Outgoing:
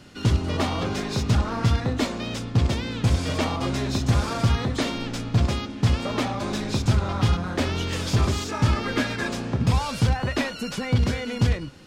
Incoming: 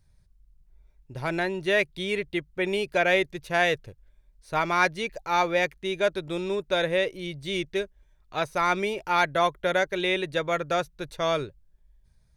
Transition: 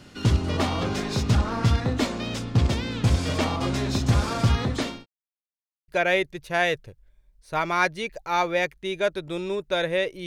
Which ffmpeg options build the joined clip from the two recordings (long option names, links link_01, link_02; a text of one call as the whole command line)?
ffmpeg -i cue0.wav -i cue1.wav -filter_complex "[0:a]apad=whole_dur=10.26,atrim=end=10.26,asplit=2[link_01][link_02];[link_01]atrim=end=5.06,asetpts=PTS-STARTPTS,afade=type=out:start_time=4.61:duration=0.45:curve=qsin[link_03];[link_02]atrim=start=5.06:end=5.88,asetpts=PTS-STARTPTS,volume=0[link_04];[1:a]atrim=start=2.88:end=7.26,asetpts=PTS-STARTPTS,afade=type=in:duration=0.004:curve=hsin[link_05];[link_03][link_04][link_05]concat=n=3:v=0:a=1" out.wav